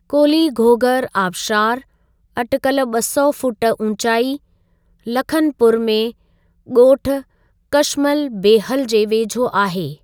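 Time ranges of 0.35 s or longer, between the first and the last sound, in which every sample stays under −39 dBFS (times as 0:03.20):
0:01.83–0:02.36
0:04.37–0:05.03
0:06.11–0:06.67
0:07.22–0:07.73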